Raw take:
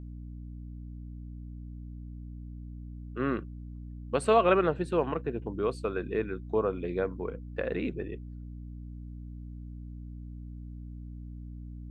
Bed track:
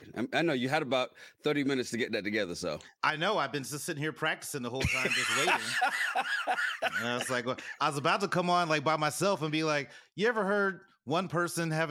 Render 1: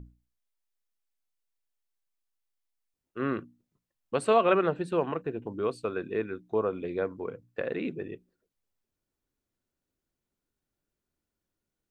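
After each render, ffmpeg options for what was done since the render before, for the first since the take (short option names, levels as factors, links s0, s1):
-af "bandreject=f=60:t=h:w=6,bandreject=f=120:t=h:w=6,bandreject=f=180:t=h:w=6,bandreject=f=240:t=h:w=6,bandreject=f=300:t=h:w=6"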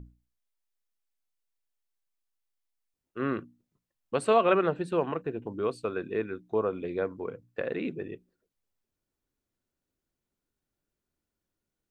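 -af anull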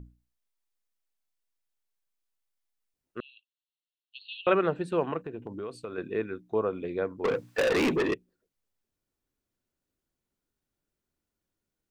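-filter_complex "[0:a]asettb=1/sr,asplit=3[s0][s1][s2];[s0]atrim=end=3.204[s3];[s1]atrim=start=3.2:end=4.47,asetpts=PTS-STARTPTS,afade=t=in:d=0.004:c=qsin,afade=t=out:st=1.266:d=0.004:c=qsin,asuperpass=centerf=3400:order=20:qfactor=1.9[s4];[s2]atrim=start=4.466[s5];[s3][s4]acrossfade=d=0.004:c1=hsin:c2=qsin[s6];[s6][s5]acrossfade=d=0.004:c1=qsin:c2=hsin,asettb=1/sr,asplit=3[s7][s8][s9];[s7]atrim=end=5.224[s10];[s8]atrim=start=5.22:end=5.98,asetpts=PTS-STARTPTS,afade=t=in:d=0.004:c=qsin,afade=t=out:st=0.756:d=0.004:c=qsin,acompressor=threshold=0.0224:ratio=5:attack=3.2:release=140:knee=1:detection=peak[s11];[s9]atrim=start=5.976[s12];[s10][s11]acrossfade=d=0.004:c1=hsin:c2=qsin[s13];[s13][s12]acrossfade=d=0.004:c1=qsin:c2=hsin,asettb=1/sr,asplit=3[s14][s15][s16];[s14]atrim=end=7.244[s17];[s15]atrim=start=7.24:end=8.14,asetpts=PTS-STARTPTS,afade=t=in:d=0.004:c=qsin,afade=t=out:st=0.896:d=0.004:c=qsin,asplit=2[s18][s19];[s19]highpass=f=720:p=1,volume=35.5,asoftclip=type=tanh:threshold=0.133[s20];[s18][s20]amix=inputs=2:normalize=0,lowpass=f=5900:p=1,volume=0.501[s21];[s16]atrim=start=8.136[s22];[s17][s21]acrossfade=d=0.004:c1=hsin:c2=qsin[s23];[s23][s22]acrossfade=d=0.004:c1=qsin:c2=hsin"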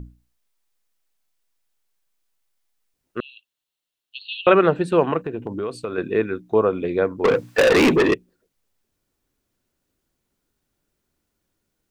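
-af "volume=3.16,alimiter=limit=0.708:level=0:latency=1"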